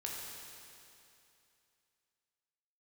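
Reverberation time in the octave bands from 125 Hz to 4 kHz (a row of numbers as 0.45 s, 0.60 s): 2.7 s, 2.7 s, 2.7 s, 2.7 s, 2.7 s, 2.7 s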